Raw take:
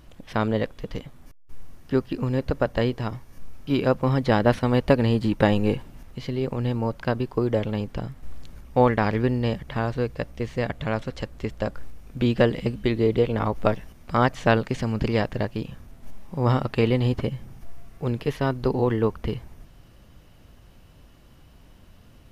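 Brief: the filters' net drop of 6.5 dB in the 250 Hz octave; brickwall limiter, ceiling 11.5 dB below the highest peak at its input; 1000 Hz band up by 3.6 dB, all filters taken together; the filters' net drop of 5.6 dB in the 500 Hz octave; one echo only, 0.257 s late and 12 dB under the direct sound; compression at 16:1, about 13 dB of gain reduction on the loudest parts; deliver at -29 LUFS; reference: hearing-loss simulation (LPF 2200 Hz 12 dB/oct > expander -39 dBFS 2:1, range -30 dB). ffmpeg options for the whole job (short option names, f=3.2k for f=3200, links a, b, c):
-af "equalizer=f=250:t=o:g=-6.5,equalizer=f=500:t=o:g=-7,equalizer=f=1k:t=o:g=7.5,acompressor=threshold=-27dB:ratio=16,alimiter=level_in=1.5dB:limit=-24dB:level=0:latency=1,volume=-1.5dB,lowpass=2.2k,aecho=1:1:257:0.251,agate=range=-30dB:threshold=-39dB:ratio=2,volume=9.5dB"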